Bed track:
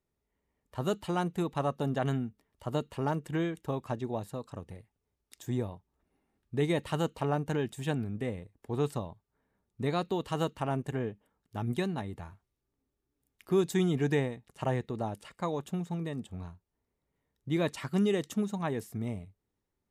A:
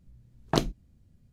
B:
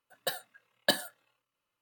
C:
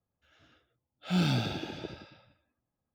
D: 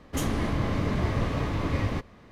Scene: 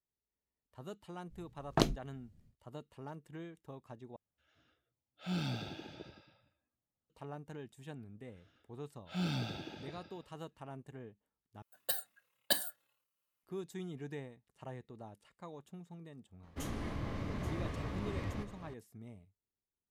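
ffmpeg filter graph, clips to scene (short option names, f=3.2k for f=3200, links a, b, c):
-filter_complex "[3:a]asplit=2[a][b];[0:a]volume=-16dB[c];[2:a]aemphasis=mode=production:type=50kf[d];[4:a]aecho=1:1:832:0.266[e];[c]asplit=3[f][g][h];[f]atrim=end=4.164[i];[a]atrim=end=2.94,asetpts=PTS-STARTPTS,volume=-9.5dB[j];[g]atrim=start=7.096:end=11.624[k];[d]atrim=end=1.81,asetpts=PTS-STARTPTS,volume=-9.5dB[l];[h]atrim=start=13.426[m];[1:a]atrim=end=1.32,asetpts=PTS-STARTPTS,volume=-4dB,afade=t=in:d=0.1,afade=t=out:st=1.22:d=0.1,adelay=1240[n];[b]atrim=end=2.94,asetpts=PTS-STARTPTS,volume=-8.5dB,afade=t=in:d=0.004:c=hsin,afade=t=out:st=2.936:d=0.004:c=hsin,adelay=8040[o];[e]atrim=end=2.31,asetpts=PTS-STARTPTS,volume=-12.5dB,afade=t=in:d=0.004:c=hsin,afade=t=out:st=2.306:d=0.004:c=hsin,adelay=16430[p];[i][j]acrossfade=d=0.004:c1=hsin:c2=hsin[q];[q][k]acrossfade=d=0.004:c1=hsin:c2=hsin[r];[r][l]acrossfade=d=0.004:c1=hsin:c2=hsin[s];[s][m]acrossfade=d=0.004:c1=hsin:c2=hsin[t];[t][n][o][p]amix=inputs=4:normalize=0"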